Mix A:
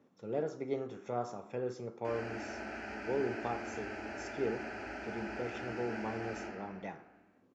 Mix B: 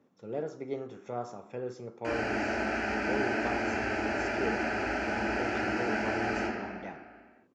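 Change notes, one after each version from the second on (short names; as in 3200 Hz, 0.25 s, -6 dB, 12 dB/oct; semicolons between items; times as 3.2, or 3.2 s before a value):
background +11.5 dB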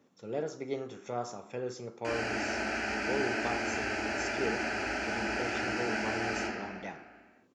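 background -4.0 dB; master: add high shelf 2700 Hz +11 dB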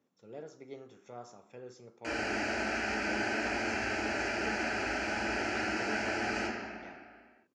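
speech -11.0 dB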